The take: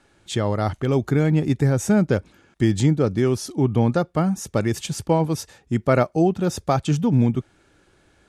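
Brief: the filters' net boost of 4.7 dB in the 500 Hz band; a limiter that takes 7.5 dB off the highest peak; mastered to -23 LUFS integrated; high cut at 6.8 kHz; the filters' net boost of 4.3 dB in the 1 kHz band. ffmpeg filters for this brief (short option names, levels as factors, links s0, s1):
-af "lowpass=6800,equalizer=f=500:t=o:g=5,equalizer=f=1000:t=o:g=4,volume=0.794,alimiter=limit=0.299:level=0:latency=1"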